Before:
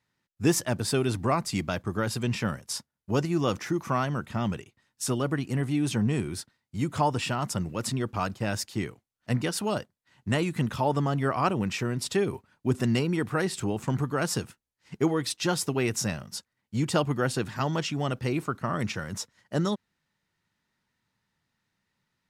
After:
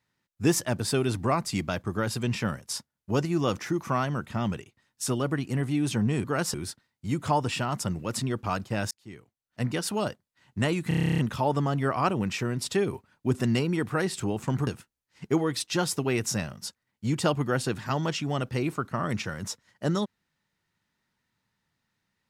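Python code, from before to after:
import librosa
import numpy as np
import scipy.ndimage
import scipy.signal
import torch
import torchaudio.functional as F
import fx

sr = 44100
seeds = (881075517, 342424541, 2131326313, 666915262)

y = fx.edit(x, sr, fx.fade_in_span(start_s=8.61, length_s=0.93),
    fx.stutter(start_s=10.58, slice_s=0.03, count=11),
    fx.move(start_s=14.07, length_s=0.3, to_s=6.24), tone=tone)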